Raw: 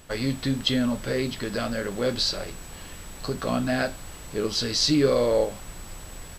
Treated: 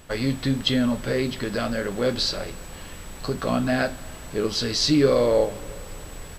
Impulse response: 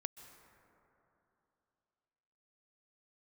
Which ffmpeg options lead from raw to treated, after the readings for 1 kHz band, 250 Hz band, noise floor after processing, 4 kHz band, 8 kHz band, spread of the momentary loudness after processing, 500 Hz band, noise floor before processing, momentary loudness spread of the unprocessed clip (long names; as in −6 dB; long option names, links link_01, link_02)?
+2.5 dB, +2.5 dB, −40 dBFS, +0.5 dB, −0.5 dB, 20 LU, +2.5 dB, −42 dBFS, 20 LU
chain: -filter_complex "[0:a]asplit=2[link_01][link_02];[1:a]atrim=start_sample=2205,lowpass=4500[link_03];[link_02][link_03]afir=irnorm=-1:irlink=0,volume=-7dB[link_04];[link_01][link_04]amix=inputs=2:normalize=0"